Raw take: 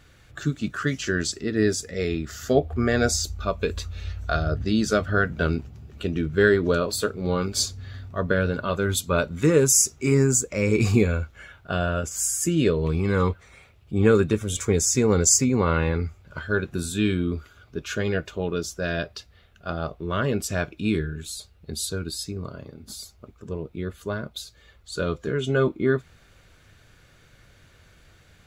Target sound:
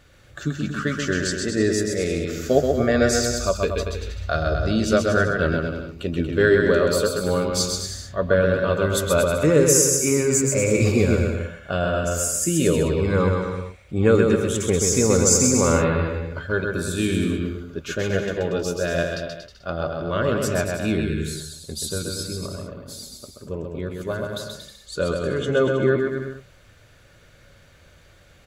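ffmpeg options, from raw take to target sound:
-filter_complex "[0:a]equalizer=f=560:t=o:w=0.25:g=8,bandreject=f=68.73:t=h:w=4,bandreject=f=137.46:t=h:w=4,bandreject=f=206.19:t=h:w=4,asplit=2[s0][s1];[s1]aecho=0:1:130|234|317.2|383.8|437:0.631|0.398|0.251|0.158|0.1[s2];[s0][s2]amix=inputs=2:normalize=0"

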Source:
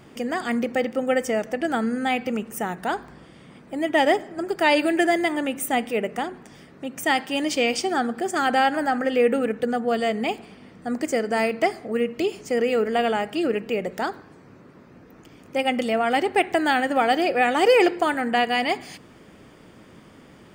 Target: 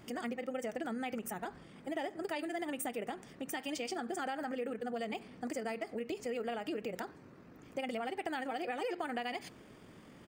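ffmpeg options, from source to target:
-af "highshelf=f=9900:g=2.5,acompressor=threshold=0.0355:ratio=5,atempo=2,volume=0.473"

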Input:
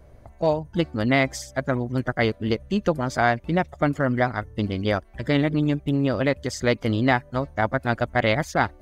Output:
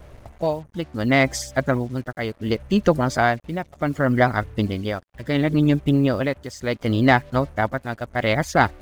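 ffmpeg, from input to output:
-af "tremolo=f=0.69:d=0.73,acontrast=39,acrusher=bits=7:mix=0:aa=0.5"

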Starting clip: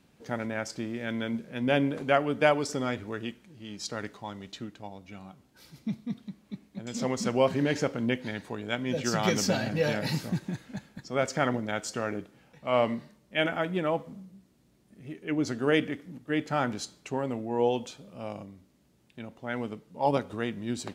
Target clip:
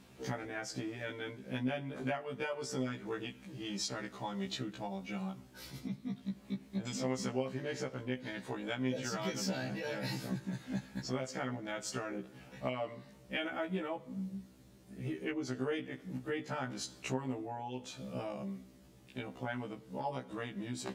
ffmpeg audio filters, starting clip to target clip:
-af "bandreject=f=50:t=h:w=6,bandreject=f=100:t=h:w=6,bandreject=f=150:t=h:w=6,acompressor=threshold=0.01:ratio=6,afftfilt=real='re*1.73*eq(mod(b,3),0)':imag='im*1.73*eq(mod(b,3),0)':win_size=2048:overlap=0.75,volume=2.37"

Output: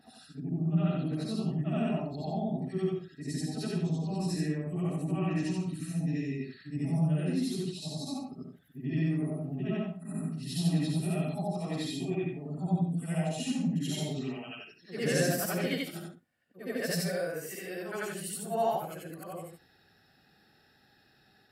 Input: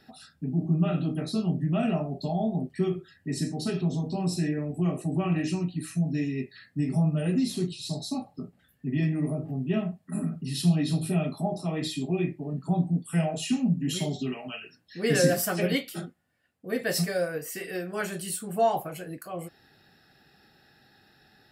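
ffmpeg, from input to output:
-af "afftfilt=real='re':imag='-im':win_size=8192:overlap=0.75"

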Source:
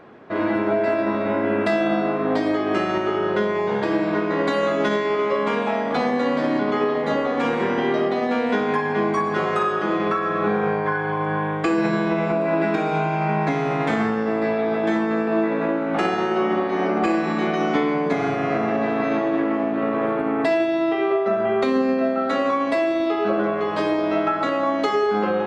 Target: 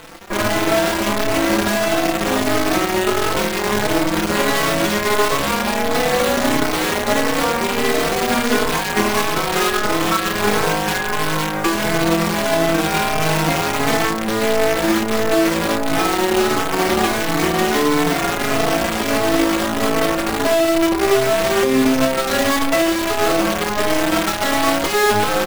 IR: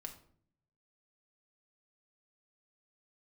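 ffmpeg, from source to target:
-filter_complex "[0:a]asettb=1/sr,asplit=3[s0][s1][s2];[s0]atrim=end=6.734[s3];[s1]atrim=start=6.73:end=7.98,asetpts=PTS-STARTPTS,afade=t=in:d=0.004:c=qsin,afade=t=out:st=1.246:d=0.004:c=qsin,bandreject=f=50:t=h:w=6,bandreject=f=100:t=h:w=6,bandreject=f=150:t=h:w=6,bandreject=f=200:t=h:w=6,bandreject=f=250:t=h:w=6,bandreject=f=300:t=h:w=6,bandreject=f=350:t=h:w=6[s4];[s2]atrim=start=7.976[s5];[s3][s4]acrossfade=d=0.004:c1=hsin:c2=qsin[s6];[s6][s5]acrossfade=d=0.004:c1=qsin:c2=hsin,asettb=1/sr,asplit=3[s7][s8][s9];[s7]atrim=end=20.304[s10];[s8]atrim=start=20.3:end=21.92,asetpts=PTS-STARTPTS,afade=t=in:d=0.004:c=qsin,afade=t=out:st=1.616:d=0.004:c=qsin,lowpass=1400[s11];[s9]atrim=start=21.916[s12];[s10][s11]acrossfade=d=0.004:c1=hsin:c2=qsin[s13];[s13][s12]acrossfade=d=0.004:c1=qsin:c2=hsin,acrusher=bits=4:dc=4:mix=0:aa=0.000001,asplit=2[s14][s15];[s15]adelay=30,volume=0.335[s16];[s14][s16]amix=inputs=2:normalize=0,alimiter=level_in=6.31:limit=0.891:release=50:level=0:latency=1,asplit=2[s17][s18];[s18]adelay=4.1,afreqshift=1.5[s19];[s17][s19]amix=inputs=2:normalize=1,volume=0.631"

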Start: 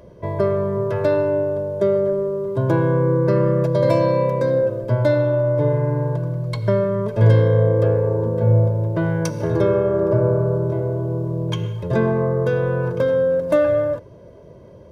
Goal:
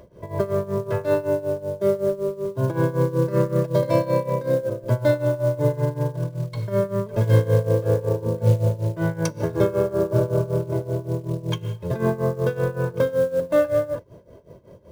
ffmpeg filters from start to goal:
-af "acrusher=bits=7:mode=log:mix=0:aa=0.000001,tremolo=f=5.3:d=0.85"

